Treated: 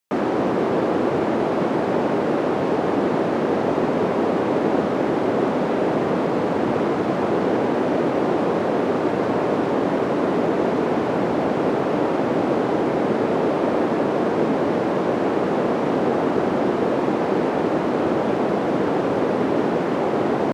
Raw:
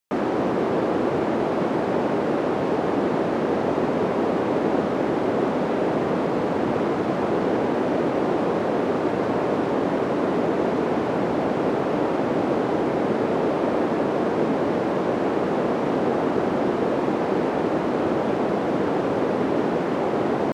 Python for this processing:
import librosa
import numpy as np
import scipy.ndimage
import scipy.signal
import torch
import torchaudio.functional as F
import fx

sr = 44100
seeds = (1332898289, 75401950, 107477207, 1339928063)

y = scipy.signal.sosfilt(scipy.signal.butter(2, 67.0, 'highpass', fs=sr, output='sos'), x)
y = y * 10.0 ** (2.0 / 20.0)